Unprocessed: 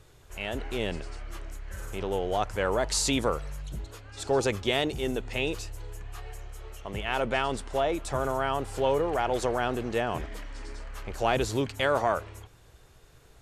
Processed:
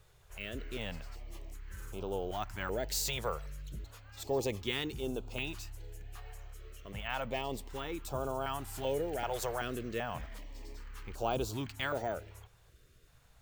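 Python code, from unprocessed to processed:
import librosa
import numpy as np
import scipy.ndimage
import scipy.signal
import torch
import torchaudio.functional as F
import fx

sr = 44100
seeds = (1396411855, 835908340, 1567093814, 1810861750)

y = fx.high_shelf(x, sr, hz=7400.0, db=11.5, at=(8.41, 9.79))
y = np.repeat(y[::2], 2)[:len(y)]
y = fx.filter_held_notch(y, sr, hz=2.6, low_hz=280.0, high_hz=1900.0)
y = y * 10.0 ** (-6.5 / 20.0)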